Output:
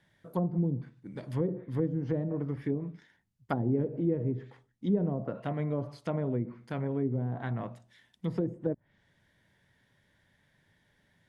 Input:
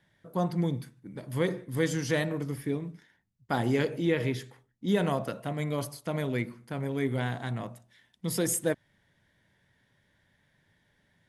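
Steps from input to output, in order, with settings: low-pass that closes with the level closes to 410 Hz, closed at -25 dBFS

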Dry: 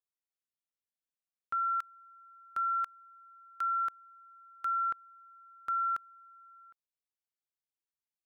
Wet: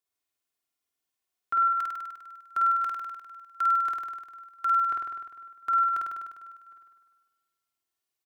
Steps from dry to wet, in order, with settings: high-pass 57 Hz 12 dB/octave; comb 2.8 ms, depth 46%; flutter echo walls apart 8.6 m, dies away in 1.4 s; trim +4 dB

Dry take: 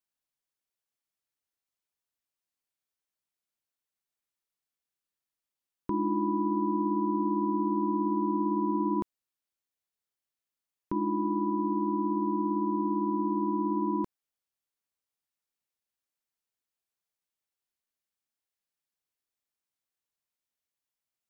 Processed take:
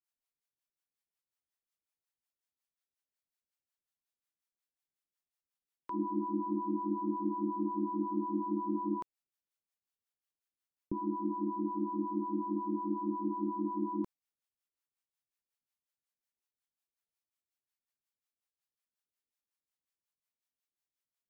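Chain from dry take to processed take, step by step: harmonic tremolo 5.5 Hz, depth 100%, crossover 570 Hz; trim -1.5 dB

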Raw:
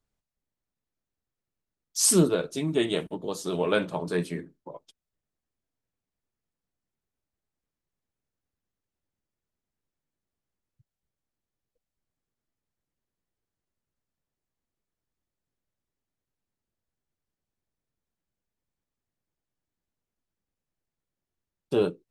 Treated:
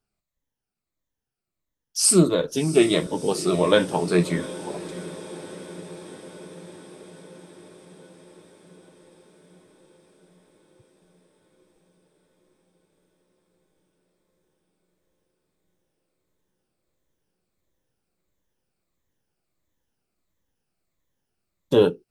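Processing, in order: drifting ripple filter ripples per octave 1.1, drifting -1.5 Hz, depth 9 dB; gain riding within 3 dB 0.5 s; echo that smears into a reverb 699 ms, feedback 70%, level -16 dB; trim +4 dB

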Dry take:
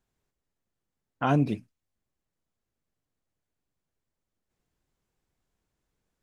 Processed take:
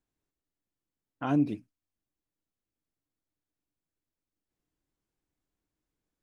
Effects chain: peaking EQ 300 Hz +10 dB 0.29 oct; trim -7.5 dB

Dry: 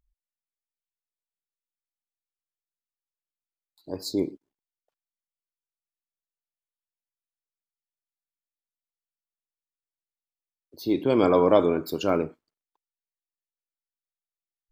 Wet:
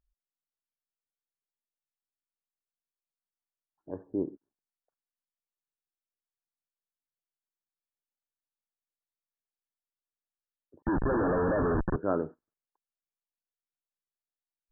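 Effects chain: 10.82–11.96 s: Schmitt trigger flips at -29.5 dBFS; brick-wall FIR low-pass 1.8 kHz; trim -5 dB

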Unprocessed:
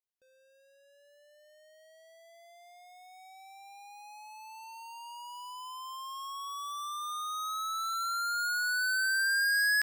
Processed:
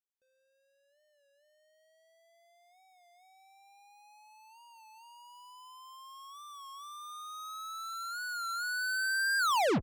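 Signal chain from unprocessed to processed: tape stop on the ending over 0.44 s; Chebyshev shaper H 2 -33 dB, 3 -13 dB, 6 -35 dB, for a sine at -25.5 dBFS; warped record 33 1/3 rpm, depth 100 cents

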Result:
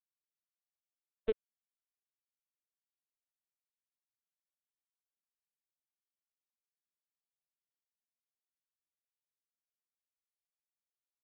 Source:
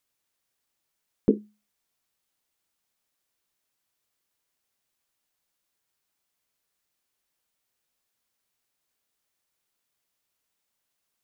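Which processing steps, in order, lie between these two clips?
high-pass 530 Hz 24 dB/octave; bit crusher 6-bit; LPC vocoder at 8 kHz pitch kept; trim +2.5 dB

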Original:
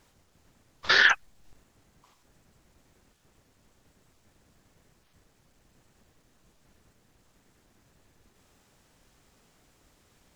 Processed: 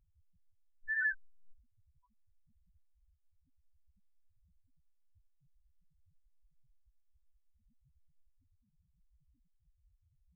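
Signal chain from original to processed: tilt shelf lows +3.5 dB, about 660 Hz; two-slope reverb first 0.3 s, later 1.8 s, DRR 15 dB; loudest bins only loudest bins 1; trim +1 dB

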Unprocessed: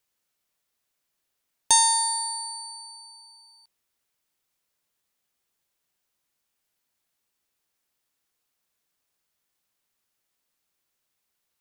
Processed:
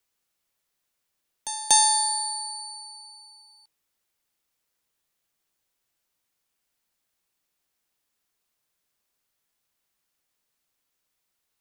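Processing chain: frequency shift -49 Hz; pre-echo 239 ms -14.5 dB

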